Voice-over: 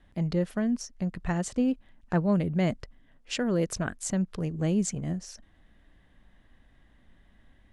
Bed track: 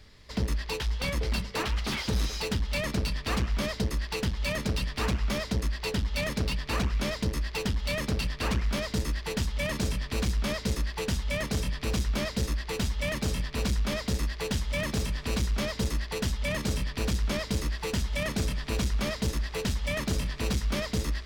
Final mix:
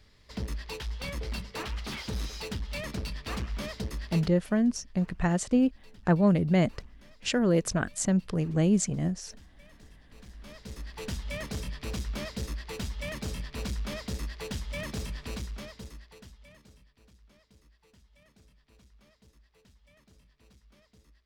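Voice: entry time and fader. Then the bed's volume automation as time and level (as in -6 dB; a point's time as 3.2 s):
3.95 s, +2.5 dB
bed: 4.16 s -6 dB
4.42 s -27 dB
10.04 s -27 dB
11.08 s -6 dB
15.21 s -6 dB
16.98 s -32 dB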